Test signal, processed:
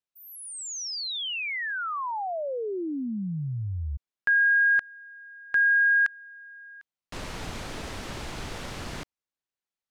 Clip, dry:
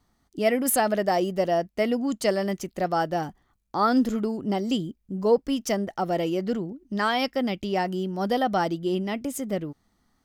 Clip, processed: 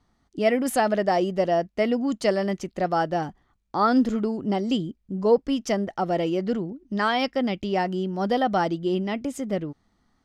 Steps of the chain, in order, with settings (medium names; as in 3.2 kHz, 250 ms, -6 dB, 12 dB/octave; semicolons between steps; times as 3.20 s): distance through air 63 m; trim +1.5 dB